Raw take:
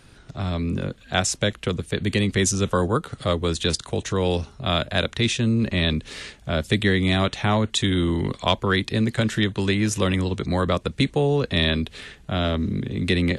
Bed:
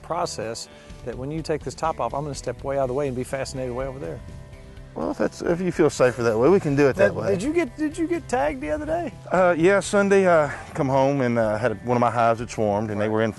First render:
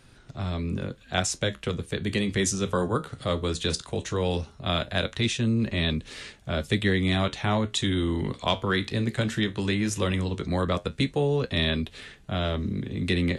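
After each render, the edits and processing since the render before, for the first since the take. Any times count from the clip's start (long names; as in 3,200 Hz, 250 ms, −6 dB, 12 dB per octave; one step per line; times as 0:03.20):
flanger 0.17 Hz, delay 7.6 ms, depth 9.1 ms, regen −64%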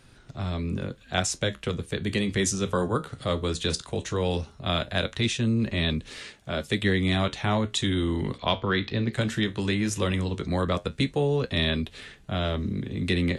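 0:06.18–0:06.82: low-shelf EQ 99 Hz −10.5 dB
0:08.38–0:09.13: low-pass filter 4,800 Hz 24 dB per octave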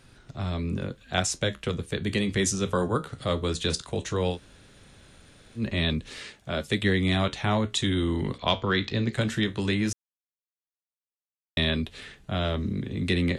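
0:04.34–0:05.60: fill with room tone, crossfade 0.10 s
0:08.46–0:09.14: low-pass with resonance 7,400 Hz, resonance Q 3.5
0:09.93–0:11.57: silence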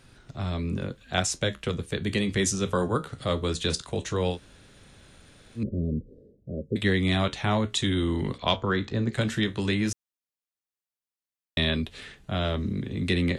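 0:05.63–0:06.76: elliptic low-pass filter 510 Hz, stop band 50 dB
0:08.56–0:09.12: flat-topped bell 3,300 Hz −8.5 dB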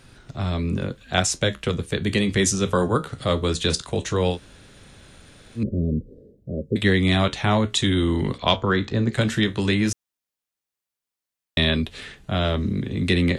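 level +5 dB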